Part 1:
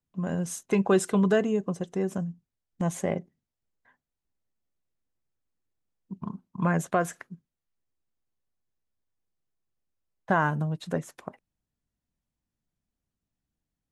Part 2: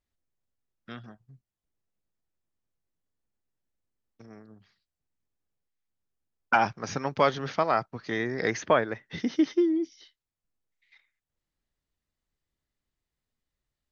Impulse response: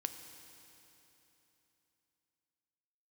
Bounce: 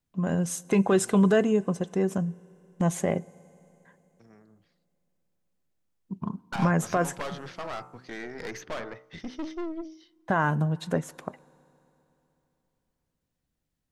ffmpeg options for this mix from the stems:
-filter_complex "[0:a]alimiter=limit=-16dB:level=0:latency=1:release=39,volume=1.5dB,asplit=2[link_01][link_02];[link_02]volume=-13dB[link_03];[1:a]bandreject=frequency=63.42:width_type=h:width=4,bandreject=frequency=126.84:width_type=h:width=4,bandreject=frequency=190.26:width_type=h:width=4,bandreject=frequency=253.68:width_type=h:width=4,bandreject=frequency=317.1:width_type=h:width=4,bandreject=frequency=380.52:width_type=h:width=4,bandreject=frequency=443.94:width_type=h:width=4,bandreject=frequency=507.36:width_type=h:width=4,bandreject=frequency=570.78:width_type=h:width=4,bandreject=frequency=634.2:width_type=h:width=4,bandreject=frequency=697.62:width_type=h:width=4,bandreject=frequency=761.04:width_type=h:width=4,bandreject=frequency=824.46:width_type=h:width=4,bandreject=frequency=887.88:width_type=h:width=4,bandreject=frequency=951.3:width_type=h:width=4,bandreject=frequency=1014.72:width_type=h:width=4,bandreject=frequency=1078.14:width_type=h:width=4,bandreject=frequency=1141.56:width_type=h:width=4,bandreject=frequency=1204.98:width_type=h:width=4,bandreject=frequency=1268.4:width_type=h:width=4,bandreject=frequency=1331.82:width_type=h:width=4,bandreject=frequency=1395.24:width_type=h:width=4,bandreject=frequency=1458.66:width_type=h:width=4,aeval=exprs='(tanh(22.4*val(0)+0.6)-tanh(0.6))/22.4':channel_layout=same,volume=-4dB,asplit=2[link_04][link_05];[link_05]volume=-23.5dB[link_06];[2:a]atrim=start_sample=2205[link_07];[link_03][link_06]amix=inputs=2:normalize=0[link_08];[link_08][link_07]afir=irnorm=-1:irlink=0[link_09];[link_01][link_04][link_09]amix=inputs=3:normalize=0"

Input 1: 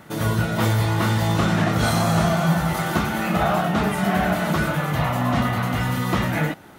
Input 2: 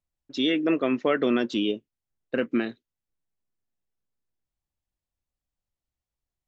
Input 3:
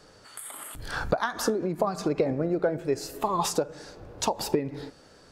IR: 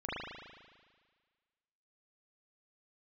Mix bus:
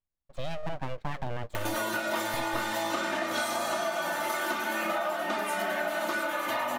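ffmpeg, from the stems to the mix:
-filter_complex "[0:a]highpass=420,aecho=1:1:3.3:0.96,acompressor=mode=upward:threshold=-25dB:ratio=2.5,adelay=1550,volume=1dB[link_01];[1:a]lowpass=1900,aeval=exprs='abs(val(0))':channel_layout=same,volume=-4dB[link_02];[link_01][link_02]amix=inputs=2:normalize=0,acompressor=threshold=-27dB:ratio=10,volume=0dB"

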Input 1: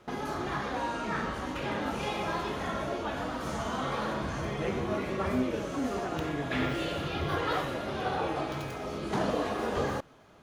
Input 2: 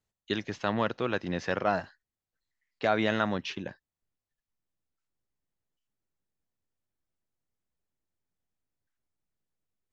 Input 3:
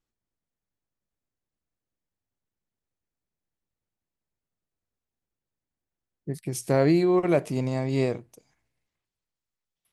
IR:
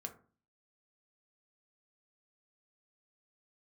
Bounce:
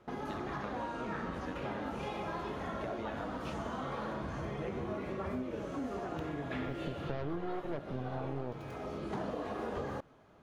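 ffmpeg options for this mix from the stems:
-filter_complex "[0:a]volume=-3.5dB[link_01];[1:a]acompressor=threshold=-33dB:ratio=6,volume=-5.5dB[link_02];[2:a]lowpass=1500,aeval=exprs='0.299*(cos(1*acos(clip(val(0)/0.299,-1,1)))-cos(1*PI/2))+0.0668*(cos(6*acos(clip(val(0)/0.299,-1,1)))-cos(6*PI/2))':channel_layout=same,adelay=400,volume=-9.5dB,asplit=2[link_03][link_04];[link_04]volume=-4.5dB[link_05];[3:a]atrim=start_sample=2205[link_06];[link_05][link_06]afir=irnorm=-1:irlink=0[link_07];[link_01][link_02][link_03][link_07]amix=inputs=4:normalize=0,highshelf=frequency=2400:gain=-9,acompressor=threshold=-34dB:ratio=6"

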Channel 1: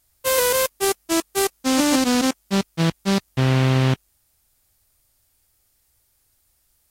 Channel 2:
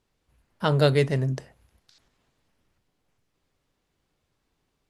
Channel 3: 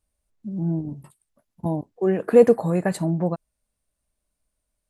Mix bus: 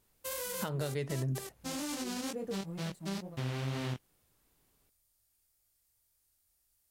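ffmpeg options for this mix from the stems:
ffmpeg -i stem1.wav -i stem2.wav -i stem3.wav -filter_complex "[0:a]highshelf=frequency=4900:gain=6,volume=-11.5dB[link_01];[1:a]acompressor=threshold=-25dB:ratio=6,volume=-0.5dB[link_02];[2:a]equalizer=frequency=1600:width=0.3:gain=-7.5,aeval=exprs='sgn(val(0))*max(abs(val(0))-0.00841,0)':channel_layout=same,volume=-15.5dB[link_03];[link_01][link_03]amix=inputs=2:normalize=0,flanger=delay=19.5:depth=6.1:speed=2.1,alimiter=level_in=5dB:limit=-24dB:level=0:latency=1:release=103,volume=-5dB,volume=0dB[link_04];[link_02][link_04]amix=inputs=2:normalize=0,alimiter=limit=-24dB:level=0:latency=1:release=332" out.wav

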